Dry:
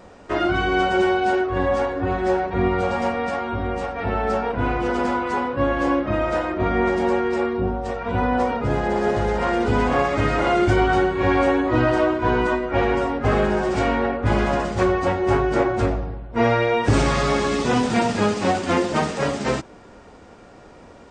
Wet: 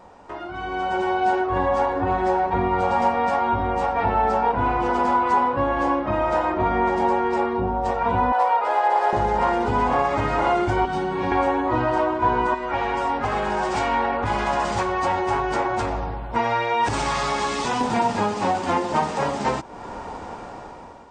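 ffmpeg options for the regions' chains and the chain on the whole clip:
ffmpeg -i in.wav -filter_complex "[0:a]asettb=1/sr,asplit=3[link_01][link_02][link_03];[link_01]atrim=end=8.324[link_04];[link_02]atrim=start=8.32:end=9.13,asetpts=PTS-STARTPTS,afade=type=in:duration=0.004:curve=qsin,afade=type=out:start_time=0.806:duration=0.004:curve=qsin,highpass=frequency=530:width=0.5412,highpass=frequency=530:width=1.3066,equalizer=frequency=6500:width_type=o:width=0.51:gain=-6,asoftclip=type=hard:threshold=-16.5dB[link_05];[link_03]atrim=start=9.126[link_06];[link_04][link_05]acrossfade=duration=0.004:curve1=hsin:curve2=qsin[link_07];[link_07][link_06]acrossfade=duration=0.004:curve1=qsin:curve2=hsin,asettb=1/sr,asplit=3[link_08][link_09][link_10];[link_08]atrim=end=10.854[link_11];[link_09]atrim=start=10.85:end=11.32,asetpts=PTS-STARTPTS,afade=type=in:duration=0.004:curve=qsin,afade=type=out:start_time=0.466:duration=0.004:curve=qsin,bandreject=frequency=7000:width=10,acrossover=split=260|3000[link_12][link_13][link_14];[link_13]acompressor=threshold=-28dB:ratio=4:attack=3.2:release=140:knee=2.83:detection=peak[link_15];[link_12][link_15][link_14]amix=inputs=3:normalize=0,lowshelf=frequency=120:width_type=q:width=1.5:gain=-9.5[link_16];[link_10]atrim=start=11.316[link_17];[link_11][link_16]acrossfade=duration=0.004:curve1=hsin:curve2=qsin[link_18];[link_18][link_17]acrossfade=duration=0.004:curve1=qsin:curve2=hsin,asettb=1/sr,asplit=3[link_19][link_20][link_21];[link_19]atrim=end=12.544[link_22];[link_20]atrim=start=12.54:end=17.81,asetpts=PTS-STARTPTS,afade=type=in:duration=0.004:curve=qsin,afade=type=out:start_time=5.266:duration=0.004:curve=qsin,tiltshelf=frequency=1300:gain=-5,acompressor=threshold=-25dB:ratio=3:attack=3.2:release=140:knee=1:detection=peak[link_23];[link_21]atrim=start=17.806[link_24];[link_22][link_23]acrossfade=duration=0.004:curve1=hsin:curve2=qsin[link_25];[link_25][link_24]acrossfade=duration=0.004:curve1=qsin:curve2=hsin,acompressor=threshold=-36dB:ratio=2.5,equalizer=frequency=900:width_type=o:width=0.59:gain=12,dynaudnorm=framelen=250:gausssize=7:maxgain=15.5dB,volume=-6dB" out.wav

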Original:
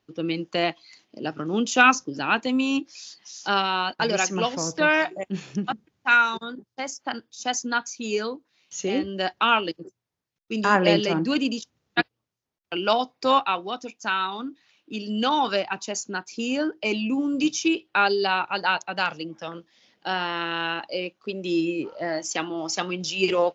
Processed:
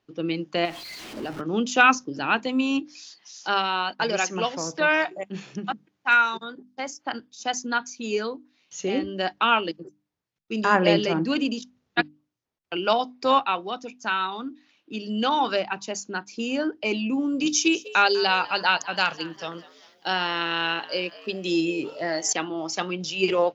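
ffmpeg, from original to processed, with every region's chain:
ffmpeg -i in.wav -filter_complex "[0:a]asettb=1/sr,asplit=3[link_01][link_02][link_03];[link_01]atrim=end=0.654[link_04];[link_02]atrim=start=0.65:end=1.41,asetpts=PTS-STARTPTS,afade=type=in:duration=0.004:curve=qsin,afade=type=out:start_time=0.756:duration=0.004:curve=qsin,aeval=exprs='val(0)+0.5*0.0224*sgn(val(0))':channel_layout=same,acompressor=threshold=-28dB:ratio=2.5:attack=3.2:release=140:knee=1:detection=peak[link_05];[link_03]atrim=start=1.406[link_06];[link_04][link_05]acrossfade=duration=0.004:curve1=hsin:curve2=qsin[link_07];[link_07][link_06]acrossfade=duration=0.004:curve1=qsin:curve2=hsin,asettb=1/sr,asplit=3[link_08][link_09][link_10];[link_08]atrim=end=2.964[link_11];[link_09]atrim=start=2.96:end=6.68,asetpts=PTS-STARTPTS,afade=type=in:duration=0.004:curve=qsin,afade=type=out:start_time=3.716:duration=0.004:curve=qsin,highpass=110,lowshelf=frequency=320:gain=-4.5,asoftclip=type=hard:threshold=-8dB[link_12];[link_10]atrim=start=6.676[link_13];[link_11][link_12]acrossfade=duration=0.004:curve1=hsin:curve2=qsin[link_14];[link_14][link_13]acrossfade=duration=0.004:curve1=qsin:curve2=hsin,asettb=1/sr,asplit=3[link_15][link_16][link_17];[link_15]atrim=end=17.464[link_18];[link_16]atrim=start=17.46:end=22.33,asetpts=PTS-STARTPTS,afade=type=in:duration=0.004:curve=qsin,afade=type=out:start_time=4.866:duration=0.004:curve=qsin,aemphasis=mode=production:type=75kf,asplit=5[link_19][link_20][link_21][link_22][link_23];[link_20]adelay=198,afreqshift=99,volume=-19dB[link_24];[link_21]adelay=396,afreqshift=198,volume=-25.6dB[link_25];[link_22]adelay=594,afreqshift=297,volume=-32.1dB[link_26];[link_23]adelay=792,afreqshift=396,volume=-38.7dB[link_27];[link_19][link_24][link_25][link_26][link_27]amix=inputs=5:normalize=0,atrim=end_sample=214767[link_28];[link_17]atrim=start=22.326[link_29];[link_18][link_28]acrossfade=duration=0.004:curve1=hsin:curve2=qsin[link_30];[link_30][link_29]acrossfade=duration=0.004:curve1=qsin:curve2=hsin,highshelf=frequency=6900:gain=-7.5,bandreject=frequency=50:width_type=h:width=6,bandreject=frequency=100:width_type=h:width=6,bandreject=frequency=150:width_type=h:width=6,bandreject=frequency=200:width_type=h:width=6,bandreject=frequency=250:width_type=h:width=6,bandreject=frequency=300:width_type=h:width=6" out.wav

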